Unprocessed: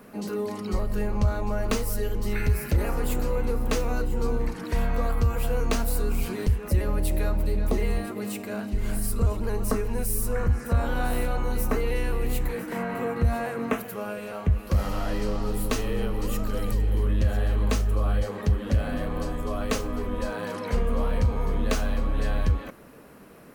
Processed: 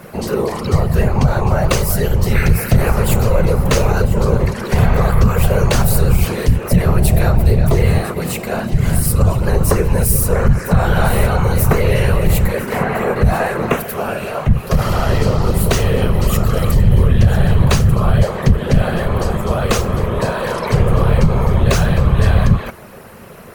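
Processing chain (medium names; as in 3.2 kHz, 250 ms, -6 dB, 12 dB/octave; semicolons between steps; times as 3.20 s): whisper effect; peaking EQ 290 Hz -14 dB 0.3 oct; loudness maximiser +14 dB; trim -1 dB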